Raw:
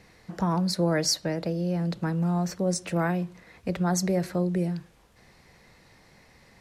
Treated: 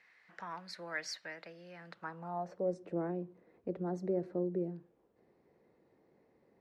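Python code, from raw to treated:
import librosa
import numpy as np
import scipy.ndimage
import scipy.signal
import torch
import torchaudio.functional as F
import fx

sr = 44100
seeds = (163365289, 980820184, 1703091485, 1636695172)

y = fx.filter_sweep_bandpass(x, sr, from_hz=1900.0, to_hz=380.0, start_s=1.78, end_s=2.81, q=2.0)
y = fx.cheby_harmonics(y, sr, harmonics=(4,), levels_db=(-42,), full_scale_db=-20.0)
y = y * 10.0 ** (-3.5 / 20.0)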